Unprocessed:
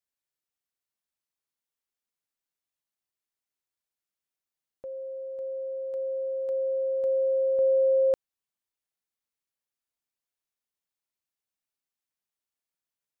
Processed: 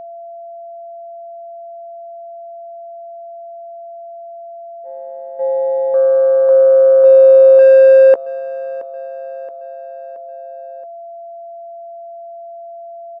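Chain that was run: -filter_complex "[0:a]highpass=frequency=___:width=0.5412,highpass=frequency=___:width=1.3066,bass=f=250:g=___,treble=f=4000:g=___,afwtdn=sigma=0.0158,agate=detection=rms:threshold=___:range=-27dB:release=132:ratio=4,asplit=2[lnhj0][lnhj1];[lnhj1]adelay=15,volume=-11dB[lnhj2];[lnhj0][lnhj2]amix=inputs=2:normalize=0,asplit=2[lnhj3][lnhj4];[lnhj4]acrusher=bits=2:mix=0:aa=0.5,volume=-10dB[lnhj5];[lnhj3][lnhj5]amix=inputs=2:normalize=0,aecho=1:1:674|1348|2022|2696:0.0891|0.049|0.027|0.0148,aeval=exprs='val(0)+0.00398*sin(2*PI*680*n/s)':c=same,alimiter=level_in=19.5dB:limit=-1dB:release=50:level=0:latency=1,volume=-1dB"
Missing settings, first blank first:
130, 130, -14, -6, -33dB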